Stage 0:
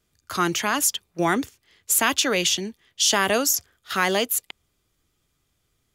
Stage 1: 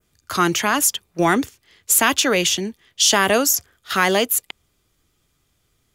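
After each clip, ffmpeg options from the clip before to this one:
ffmpeg -i in.wav -af "acontrast=23,adynamicequalizer=threshold=0.0316:dfrequency=4300:dqfactor=0.97:tfrequency=4300:tqfactor=0.97:attack=5:release=100:ratio=0.375:range=2.5:mode=cutabove:tftype=bell" out.wav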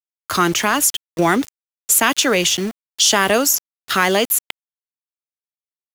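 ffmpeg -i in.wav -filter_complex "[0:a]asplit=2[link_01][link_02];[link_02]acompressor=threshold=-25dB:ratio=6,volume=2.5dB[link_03];[link_01][link_03]amix=inputs=2:normalize=0,aeval=exprs='val(0)*gte(abs(val(0)),0.0501)':channel_layout=same,volume=-1.5dB" out.wav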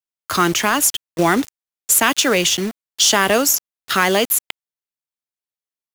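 ffmpeg -i in.wav -af "acrusher=bits=4:mode=log:mix=0:aa=0.000001" out.wav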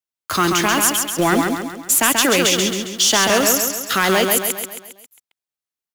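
ffmpeg -i in.wav -filter_complex "[0:a]asoftclip=type=tanh:threshold=-7dB,asplit=2[link_01][link_02];[link_02]aecho=0:1:135|270|405|540|675|810:0.631|0.315|0.158|0.0789|0.0394|0.0197[link_03];[link_01][link_03]amix=inputs=2:normalize=0" out.wav

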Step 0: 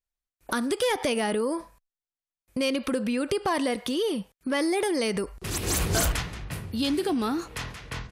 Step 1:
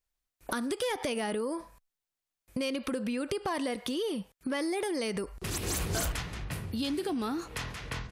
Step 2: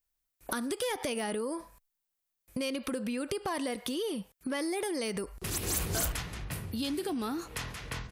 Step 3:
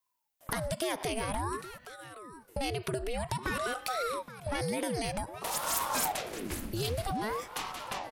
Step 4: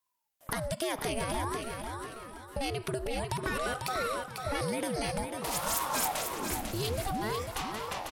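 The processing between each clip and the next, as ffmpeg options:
ffmpeg -i in.wav -af "acompressor=threshold=-43dB:ratio=2,volume=4.5dB" out.wav
ffmpeg -i in.wav -af "highshelf=frequency=11000:gain=11,volume=-1.5dB" out.wav
ffmpeg -i in.wav -af "aecho=1:1:821:0.2,aeval=exprs='val(0)*sin(2*PI*570*n/s+570*0.8/0.52*sin(2*PI*0.52*n/s))':channel_layout=same,volume=3dB" out.wav
ffmpeg -i in.wav -filter_complex "[0:a]asplit=2[link_01][link_02];[link_02]aecho=0:1:496|992|1488|1984:0.501|0.15|0.0451|0.0135[link_03];[link_01][link_03]amix=inputs=2:normalize=0" -ar 44100 -c:a libmp3lame -b:a 224k out.mp3

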